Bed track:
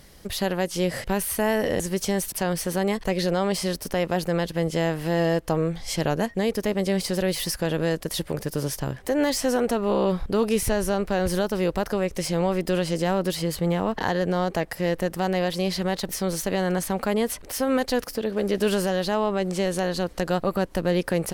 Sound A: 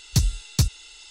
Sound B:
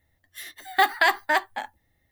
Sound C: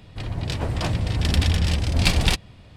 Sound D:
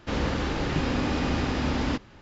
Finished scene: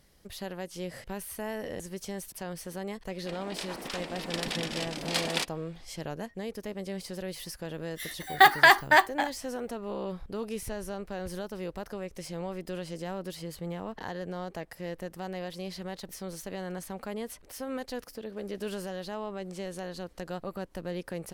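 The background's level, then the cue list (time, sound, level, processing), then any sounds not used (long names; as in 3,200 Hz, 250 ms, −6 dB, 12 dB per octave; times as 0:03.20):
bed track −13 dB
0:03.09: mix in C −5.5 dB + gate on every frequency bin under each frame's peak −15 dB weak
0:07.62: mix in B −2 dB + automatic gain control gain up to 6 dB
not used: A, D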